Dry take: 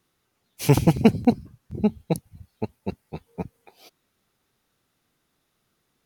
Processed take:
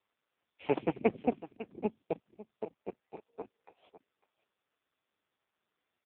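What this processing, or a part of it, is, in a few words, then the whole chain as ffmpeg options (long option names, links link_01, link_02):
satellite phone: -af "highpass=380,lowpass=3100,aecho=1:1:551:0.168,volume=-5dB" -ar 8000 -c:a libopencore_amrnb -b:a 5150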